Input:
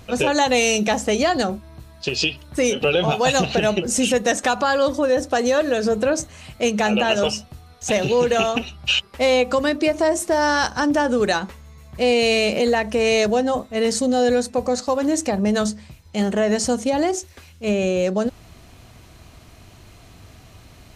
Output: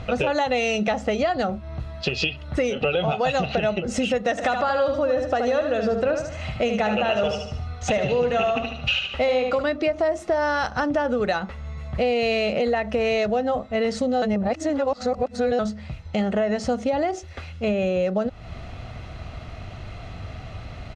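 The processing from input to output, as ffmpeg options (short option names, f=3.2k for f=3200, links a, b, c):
-filter_complex "[0:a]asplit=3[a][b][c];[a]afade=t=out:st=4.37:d=0.02[d];[b]aecho=1:1:74|148|222|296:0.473|0.166|0.058|0.0203,afade=t=in:st=4.37:d=0.02,afade=t=out:st=9.62:d=0.02[e];[c]afade=t=in:st=9.62:d=0.02[f];[d][e][f]amix=inputs=3:normalize=0,asplit=3[g][h][i];[g]atrim=end=14.222[j];[h]atrim=start=14.218:end=15.592,asetpts=PTS-STARTPTS,areverse[k];[i]atrim=start=15.588[l];[j][k]acrossfade=d=0.004:c1=hsin:c2=hsin[m];[m][l]acrossfade=d=0.004:c1=hsin:c2=hsin,lowpass=3.1k,aecho=1:1:1.5:0.4,acompressor=threshold=-32dB:ratio=3,volume=8dB"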